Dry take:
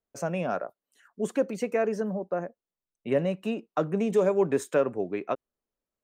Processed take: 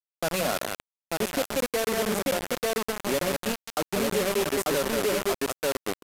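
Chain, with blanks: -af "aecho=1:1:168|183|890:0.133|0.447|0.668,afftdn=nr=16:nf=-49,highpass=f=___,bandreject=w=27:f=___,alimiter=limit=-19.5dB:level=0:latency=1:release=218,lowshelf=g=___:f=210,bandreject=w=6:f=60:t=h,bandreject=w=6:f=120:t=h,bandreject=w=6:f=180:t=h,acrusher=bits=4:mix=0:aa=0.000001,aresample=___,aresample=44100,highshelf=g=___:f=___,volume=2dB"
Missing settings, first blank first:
120, 5700, -2.5, 32000, 7.5, 8800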